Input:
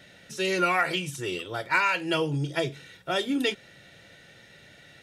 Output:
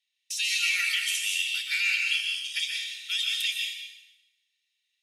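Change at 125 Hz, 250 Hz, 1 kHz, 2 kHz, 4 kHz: below −40 dB, below −40 dB, −22.5 dB, +1.5 dB, +7.5 dB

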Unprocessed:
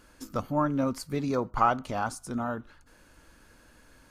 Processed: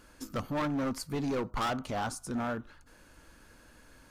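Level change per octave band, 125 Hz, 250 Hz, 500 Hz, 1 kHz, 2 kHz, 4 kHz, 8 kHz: −3.5, −3.0, −4.0, −7.0, −1.5, +3.0, +0.5 decibels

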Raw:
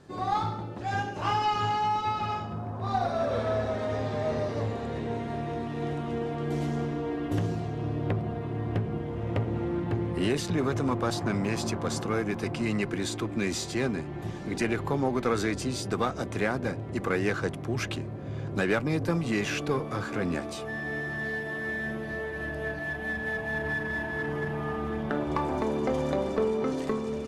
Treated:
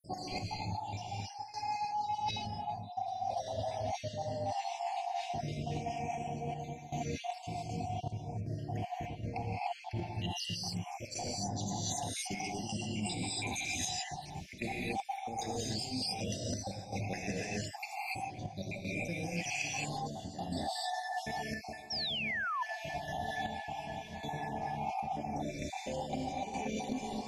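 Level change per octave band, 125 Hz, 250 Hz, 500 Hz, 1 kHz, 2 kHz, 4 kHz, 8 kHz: −9.0, −11.0, −11.5, −4.5, −8.5, 0.0, +1.0 decibels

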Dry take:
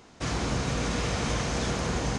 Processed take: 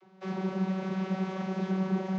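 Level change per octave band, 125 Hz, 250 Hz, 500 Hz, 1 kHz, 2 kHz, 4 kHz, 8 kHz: −3.5 dB, +2.5 dB, −3.0 dB, −5.5 dB, −10.0 dB, −16.5 dB, below −25 dB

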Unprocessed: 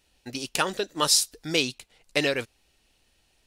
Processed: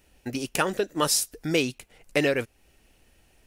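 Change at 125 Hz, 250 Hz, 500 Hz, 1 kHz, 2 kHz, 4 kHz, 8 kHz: +4.0, +4.0, +3.0, 0.0, 0.0, −5.0, −2.0 decibels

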